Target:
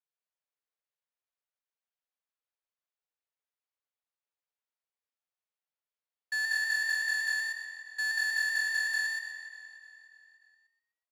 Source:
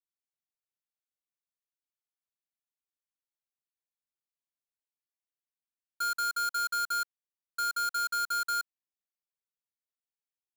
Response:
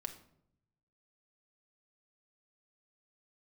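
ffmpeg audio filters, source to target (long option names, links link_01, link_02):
-filter_complex "[0:a]asplit=2[link_01][link_02];[link_02]aecho=0:1:281|562|843|1124|1405:0.266|0.136|0.0692|0.0353|0.018[link_03];[link_01][link_03]amix=inputs=2:normalize=0,adynamicsmooth=sensitivity=3.5:basefreq=4000,afreqshift=420,asplit=2[link_04][link_05];[link_05]asplit=4[link_06][link_07][link_08][link_09];[link_06]adelay=119,afreqshift=45,volume=-3dB[link_10];[link_07]adelay=238,afreqshift=90,volume=-12.9dB[link_11];[link_08]adelay=357,afreqshift=135,volume=-22.8dB[link_12];[link_09]adelay=476,afreqshift=180,volume=-32.7dB[link_13];[link_10][link_11][link_12][link_13]amix=inputs=4:normalize=0[link_14];[link_04][link_14]amix=inputs=2:normalize=0,asetrate=41895,aresample=44100"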